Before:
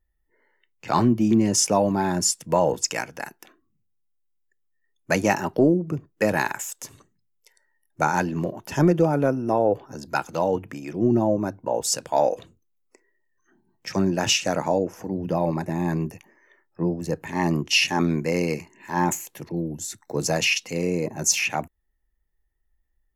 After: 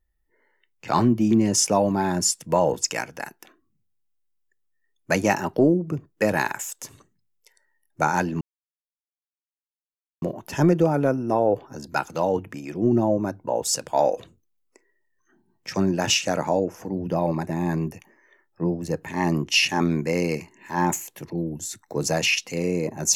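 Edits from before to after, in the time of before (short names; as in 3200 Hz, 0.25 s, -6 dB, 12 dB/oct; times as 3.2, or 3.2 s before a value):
8.41 insert silence 1.81 s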